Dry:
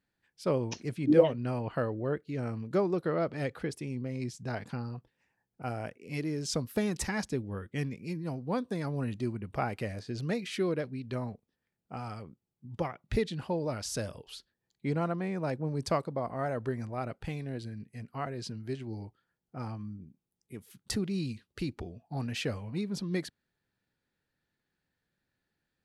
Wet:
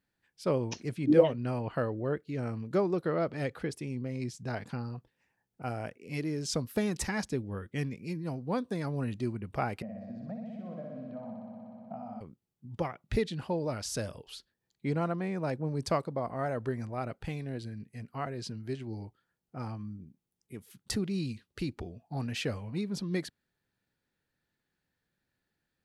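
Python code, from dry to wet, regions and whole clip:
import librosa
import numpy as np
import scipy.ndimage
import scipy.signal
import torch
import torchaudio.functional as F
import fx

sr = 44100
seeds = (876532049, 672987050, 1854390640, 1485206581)

y = fx.chain(x, sr, fx.double_bandpass(hz=380.0, octaves=1.6),
    fx.room_flutter(wall_m=10.5, rt60_s=1.4),
    fx.band_squash(depth_pct=100), at=(9.82, 12.21))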